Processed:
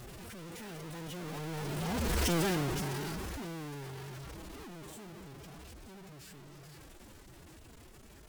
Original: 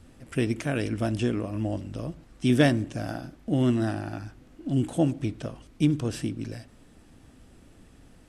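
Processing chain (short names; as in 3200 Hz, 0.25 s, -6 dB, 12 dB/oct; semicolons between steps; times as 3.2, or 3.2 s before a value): infinite clipping; Doppler pass-by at 2.31, 25 m/s, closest 7 m; formant-preserving pitch shift +5.5 st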